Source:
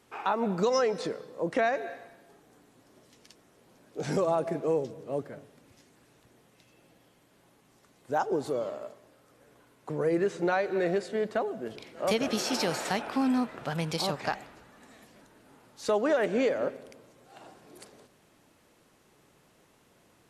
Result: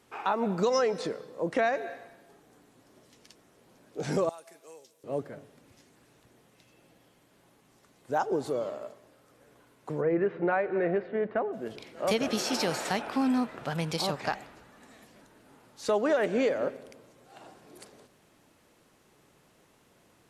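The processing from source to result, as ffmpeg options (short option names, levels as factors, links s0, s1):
-filter_complex "[0:a]asettb=1/sr,asplit=3[s0][s1][s2];[s0]atrim=end=4.294[s3];[s1]atrim=start=4.29:end=5.04,asetpts=PTS-STARTPTS,afade=t=in:d=0.004:c=qsin,afade=t=out:st=0.746:d=0.004:c=qsin,aderivative[s4];[s2]atrim=start=5.036[s5];[s3][s4]acrossfade=d=0.004:c1=hsin:c2=qsin[s6];[s6][s5]acrossfade=d=0.004:c1=qsin:c2=hsin,asplit=3[s7][s8][s9];[s7]afade=t=out:st=10:d=0.02[s10];[s8]lowpass=f=2400:w=0.5412,lowpass=f=2400:w=1.3066,afade=t=in:st=10:d=0.02,afade=t=out:st=11.52:d=0.02[s11];[s9]afade=t=in:st=11.52:d=0.02[s12];[s10][s11][s12]amix=inputs=3:normalize=0"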